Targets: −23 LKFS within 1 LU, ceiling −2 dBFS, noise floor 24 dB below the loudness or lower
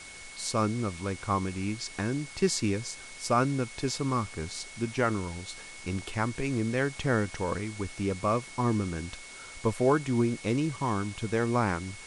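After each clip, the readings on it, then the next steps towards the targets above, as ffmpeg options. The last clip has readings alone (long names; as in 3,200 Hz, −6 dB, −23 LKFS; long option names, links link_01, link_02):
interfering tone 2,200 Hz; level of the tone −47 dBFS; background noise floor −46 dBFS; target noise floor −54 dBFS; integrated loudness −30.0 LKFS; sample peak −12.0 dBFS; target loudness −23.0 LKFS
→ -af "bandreject=frequency=2200:width=30"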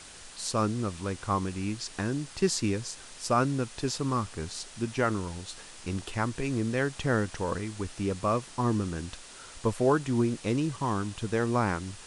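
interfering tone none found; background noise floor −48 dBFS; target noise floor −55 dBFS
→ -af "afftdn=noise_reduction=7:noise_floor=-48"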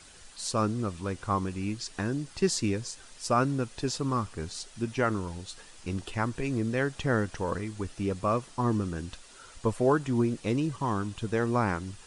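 background noise floor −52 dBFS; target noise floor −55 dBFS
→ -af "afftdn=noise_reduction=6:noise_floor=-52"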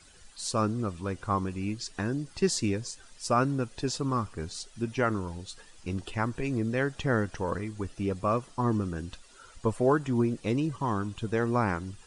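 background noise floor −55 dBFS; integrated loudness −30.5 LKFS; sample peak −12.5 dBFS; target loudness −23.0 LKFS
→ -af "volume=7.5dB"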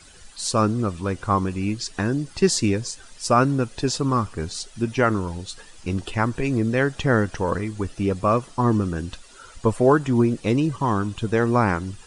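integrated loudness −23.0 LKFS; sample peak −5.0 dBFS; background noise floor −47 dBFS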